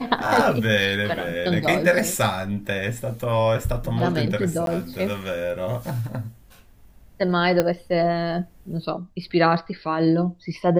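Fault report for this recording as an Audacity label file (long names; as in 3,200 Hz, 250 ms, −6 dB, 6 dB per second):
4.660000	4.670000	drop-out 12 ms
7.600000	7.600000	click −6 dBFS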